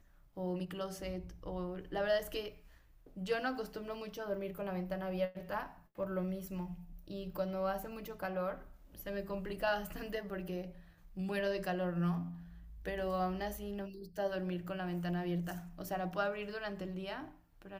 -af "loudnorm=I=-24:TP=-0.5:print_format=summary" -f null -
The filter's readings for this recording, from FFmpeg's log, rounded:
Input Integrated:    -39.3 LUFS
Input True Peak:     -20.9 dBTP
Input LRA:             1.7 LU
Input Threshold:     -49.7 LUFS